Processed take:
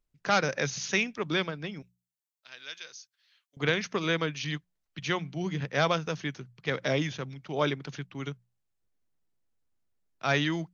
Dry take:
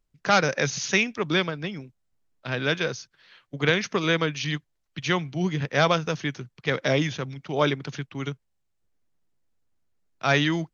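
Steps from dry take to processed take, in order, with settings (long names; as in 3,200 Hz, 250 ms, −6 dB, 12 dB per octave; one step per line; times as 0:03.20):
0:01.82–0:03.57: first difference
mains-hum notches 60/120/180 Hz
level −5 dB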